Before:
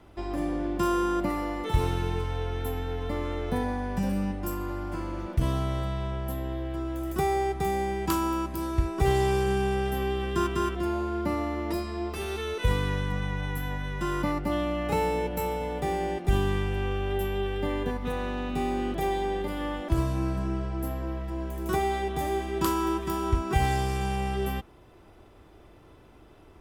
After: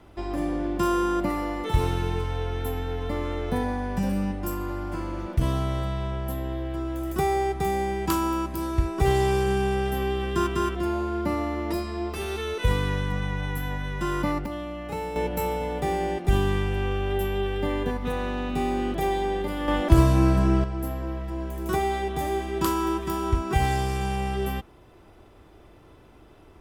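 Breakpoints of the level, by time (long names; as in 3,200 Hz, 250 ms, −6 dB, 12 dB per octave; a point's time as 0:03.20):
+2 dB
from 0:14.46 −5.5 dB
from 0:15.16 +2.5 dB
from 0:19.68 +9 dB
from 0:20.64 +1.5 dB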